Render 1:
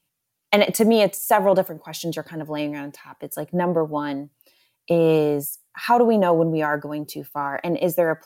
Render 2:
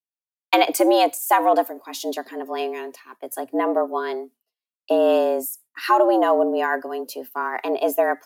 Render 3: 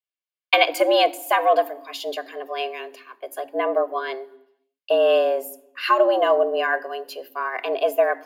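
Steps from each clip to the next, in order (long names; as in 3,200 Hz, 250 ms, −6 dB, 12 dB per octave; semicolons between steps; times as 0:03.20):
frequency shifter +120 Hz; downward expander −40 dBFS
convolution reverb RT60 0.85 s, pre-delay 3 ms, DRR 16.5 dB; level −7 dB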